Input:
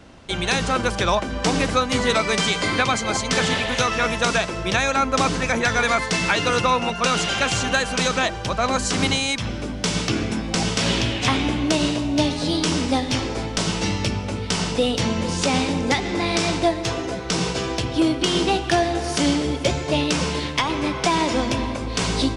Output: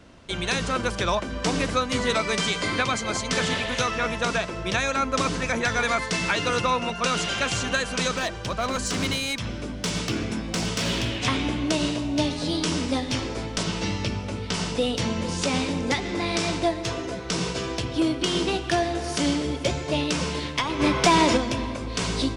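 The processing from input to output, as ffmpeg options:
ffmpeg -i in.wav -filter_complex "[0:a]asettb=1/sr,asplit=3[link_01][link_02][link_03];[link_01]atrim=end=3.914[link_04];[link_02]atrim=start=3.91:end=4.66,asetpts=PTS-STARTPTS,afade=type=in:duration=0.004:curve=qsin,afade=type=out:start_time=0.746:duration=0.004:curve=qsin,highshelf=frequency=4000:gain=-5[link_05];[link_03]atrim=start=4.656[link_06];[link_04][link_05]acrossfade=duration=0.004:curve1=hsin:curve2=qsin[link_07];[link_07][link_06]acrossfade=duration=0.004:curve1=qsin:curve2=hsin,asettb=1/sr,asplit=3[link_08][link_09][link_10];[link_08]atrim=end=8.134[link_11];[link_09]atrim=start=8.13:end=11.21,asetpts=PTS-STARTPTS,afade=type=in:duration=0.004:curve=qsin,afade=type=out:start_time=3.076:duration=0.004:curve=qsin,volume=16dB,asoftclip=hard,volume=-16dB[link_12];[link_10]atrim=start=11.206[link_13];[link_11][link_12]acrossfade=duration=0.004:curve1=hsin:curve2=qsin[link_14];[link_14][link_13]acrossfade=duration=0.004:curve1=qsin:curve2=hsin,asettb=1/sr,asplit=3[link_15][link_16][link_17];[link_15]atrim=end=13.634[link_18];[link_16]atrim=start=13.63:end=14.54,asetpts=PTS-STARTPTS,afade=type=in:duration=0.004:curve=qsin,afade=type=out:start_time=0.906:duration=0.004:curve=qsin,acrossover=split=6500[link_19][link_20];[link_20]acompressor=threshold=-45dB:ratio=4:attack=1:release=60[link_21];[link_19][link_21]amix=inputs=2:normalize=0[link_22];[link_17]atrim=start=14.536[link_23];[link_18][link_22]acrossfade=duration=0.004:curve1=hsin:curve2=qsin[link_24];[link_24][link_23]acrossfade=duration=0.004:curve1=qsin:curve2=hsin,asplit=3[link_25][link_26][link_27];[link_25]afade=type=out:start_time=20.79:duration=0.02[link_28];[link_26]acontrast=77,afade=type=in:start_time=20.79:duration=0.02,afade=type=out:start_time=21.36:duration=0.02[link_29];[link_27]afade=type=in:start_time=21.36:duration=0.02[link_30];[link_28][link_29][link_30]amix=inputs=3:normalize=0,bandreject=frequency=800:width=15,volume=-4dB" out.wav

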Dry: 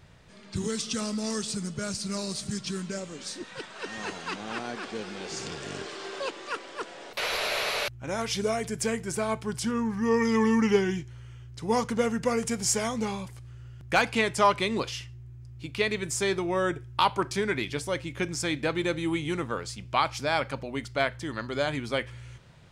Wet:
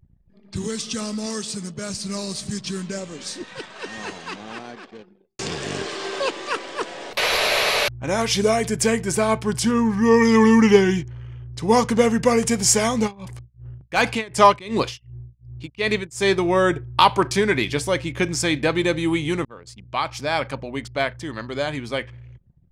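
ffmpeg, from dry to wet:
ffmpeg -i in.wav -filter_complex "[0:a]asettb=1/sr,asplit=3[link_01][link_02][link_03];[link_01]atrim=end=1.264[link_04];[link_02]atrim=start=1.26:end=1.9,asetpts=PTS-STARTPTS,afade=type=in:duration=0.004:curve=qsin,afade=type=out:start_time=0.636:duration=0.004:curve=qsin,lowshelf=frequency=86:gain=-10.5[link_05];[link_03]atrim=start=1.896[link_06];[link_04][link_05]acrossfade=duration=0.004:curve1=hsin:curve2=qsin[link_07];[link_07][link_06]acrossfade=duration=0.004:curve1=qsin:curve2=hsin,asplit=3[link_08][link_09][link_10];[link_08]afade=type=out:start_time=13.06:duration=0.02[link_11];[link_09]tremolo=f=2.7:d=0.91,afade=type=in:start_time=13.06:duration=0.02,afade=type=out:start_time=16.37:duration=0.02[link_12];[link_10]afade=type=in:start_time=16.37:duration=0.02[link_13];[link_11][link_12][link_13]amix=inputs=3:normalize=0,asplit=3[link_14][link_15][link_16];[link_14]atrim=end=5.39,asetpts=PTS-STARTPTS,afade=type=out:start_time=3.29:duration=2.1[link_17];[link_15]atrim=start=5.39:end=19.45,asetpts=PTS-STARTPTS,afade=type=in:duration=0.004:curve=hsin,afade=type=out:start_time=14.056:duration=0.004:curve=hsin:silence=0.0841395[link_18];[link_16]atrim=start=19.45,asetpts=PTS-STARTPTS,afade=type=in:duration=0.99:silence=0.0841395[link_19];[link_17][link_18][link_19]concat=n=3:v=0:a=1,bandreject=frequency=1400:width=14,dynaudnorm=framelen=620:gausssize=13:maxgain=6.5dB,anlmdn=0.0251,volume=3dB" out.wav

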